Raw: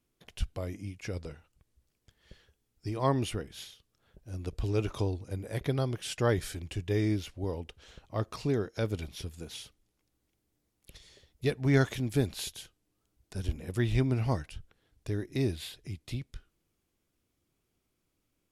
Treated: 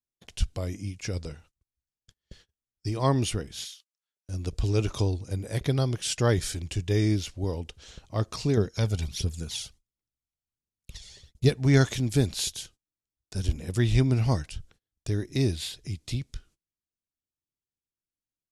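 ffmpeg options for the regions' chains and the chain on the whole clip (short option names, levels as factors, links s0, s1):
-filter_complex "[0:a]asettb=1/sr,asplit=3[s0][s1][s2];[s0]atrim=end=3.654[s3];[s1]atrim=start=3.65:end=4.29,asetpts=PTS-STARTPTS,afade=t=in:d=0.004:c=qsin,afade=t=out:st=0.636:d=0.004:c=qsin,highpass=1300,highshelf=f=7500:g=5[s4];[s2]atrim=start=4.286[s5];[s3][s4]acrossfade=d=0.004:c1=hsin:c2=qsin[s6];[s6][s5]acrossfade=d=0.004:c1=qsin:c2=hsin,asettb=1/sr,asplit=3[s7][s8][s9];[s7]atrim=end=8.574[s10];[s8]atrim=start=8.57:end=11.49,asetpts=PTS-STARTPTS,afade=t=in:d=0.004:c=qsin,afade=t=out:st=2.916:d=0.004:c=qsin,equalizer=f=310:t=o:w=0.2:g=-5.5,aphaser=in_gain=1:out_gain=1:delay=1.5:decay=0.49:speed=1.4:type=triangular[s11];[s9]atrim=start=11.486[s12];[s10][s11]acrossfade=d=0.004:c1=hsin:c2=qsin[s13];[s13][s12]acrossfade=d=0.004:c1=qsin:c2=hsin,lowpass=7600,agate=range=0.0447:threshold=0.00112:ratio=16:detection=peak,bass=f=250:g=4,treble=f=4000:g=12,volume=1.26"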